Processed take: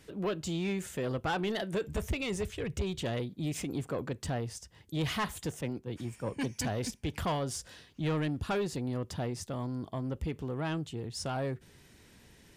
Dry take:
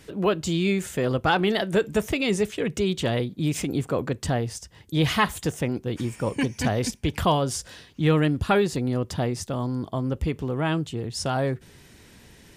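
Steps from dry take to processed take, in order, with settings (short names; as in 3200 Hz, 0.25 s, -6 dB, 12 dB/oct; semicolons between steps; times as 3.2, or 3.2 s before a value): 1.87–2.99 resonant low shelf 130 Hz +14 dB, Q 1.5; soft clip -18.5 dBFS, distortion -14 dB; 5.61–6.61 three-band expander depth 100%; gain -7.5 dB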